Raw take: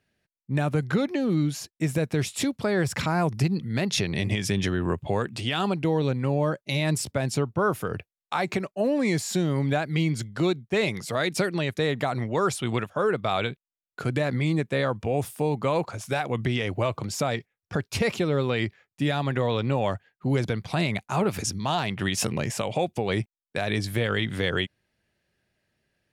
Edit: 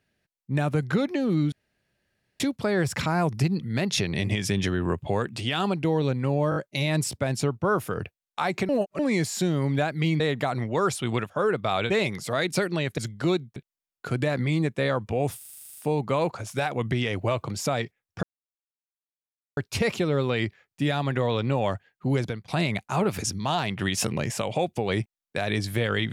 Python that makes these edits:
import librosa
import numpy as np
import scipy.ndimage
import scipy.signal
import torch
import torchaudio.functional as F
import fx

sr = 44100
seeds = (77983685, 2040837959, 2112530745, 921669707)

y = fx.edit(x, sr, fx.room_tone_fill(start_s=1.52, length_s=0.88),
    fx.stutter(start_s=6.5, slice_s=0.02, count=4),
    fx.reverse_span(start_s=8.63, length_s=0.3),
    fx.swap(start_s=10.14, length_s=0.58, other_s=11.8, other_length_s=1.7),
    fx.stutter(start_s=15.31, slice_s=0.04, count=11),
    fx.insert_silence(at_s=17.77, length_s=1.34),
    fx.fade_out_to(start_s=20.27, length_s=0.41, curve='qsin', floor_db=-20.0), tone=tone)